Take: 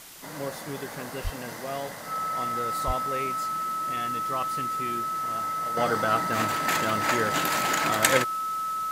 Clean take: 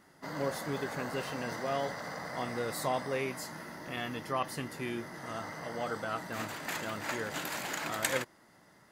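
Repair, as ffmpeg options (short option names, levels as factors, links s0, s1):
-filter_complex "[0:a]bandreject=f=1300:w=30,asplit=3[s0][s1][s2];[s0]afade=t=out:st=1.23:d=0.02[s3];[s1]highpass=f=140:w=0.5412,highpass=f=140:w=1.3066,afade=t=in:st=1.23:d=0.02,afade=t=out:st=1.35:d=0.02[s4];[s2]afade=t=in:st=1.35:d=0.02[s5];[s3][s4][s5]amix=inputs=3:normalize=0,asplit=3[s6][s7][s8];[s6]afade=t=out:st=2.86:d=0.02[s9];[s7]highpass=f=140:w=0.5412,highpass=f=140:w=1.3066,afade=t=in:st=2.86:d=0.02,afade=t=out:st=2.98:d=0.02[s10];[s8]afade=t=in:st=2.98:d=0.02[s11];[s9][s10][s11]amix=inputs=3:normalize=0,afwtdn=0.0056,asetnsamples=n=441:p=0,asendcmd='5.77 volume volume -10dB',volume=1"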